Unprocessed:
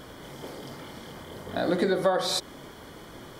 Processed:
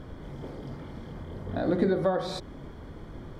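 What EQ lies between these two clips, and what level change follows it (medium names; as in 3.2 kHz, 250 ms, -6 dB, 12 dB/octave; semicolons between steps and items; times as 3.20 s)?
RIAA curve playback; hum notches 60/120/180 Hz; band-stop 3 kHz, Q 25; -4.5 dB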